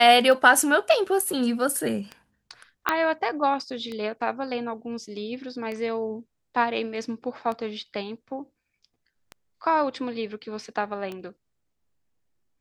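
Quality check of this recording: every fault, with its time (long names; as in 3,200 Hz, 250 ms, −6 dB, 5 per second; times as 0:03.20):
scratch tick 33 1/3 rpm
0:02.89: click −8 dBFS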